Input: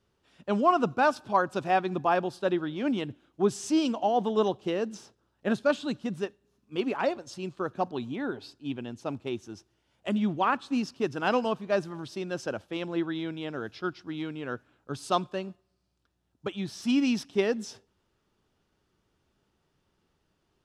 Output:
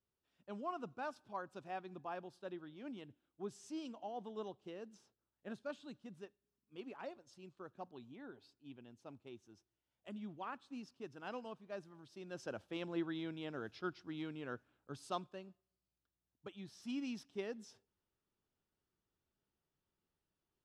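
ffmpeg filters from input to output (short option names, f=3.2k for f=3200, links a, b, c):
-af "volume=-9.5dB,afade=t=in:st=12.09:d=0.59:silence=0.298538,afade=t=out:st=14.36:d=1.03:silence=0.421697"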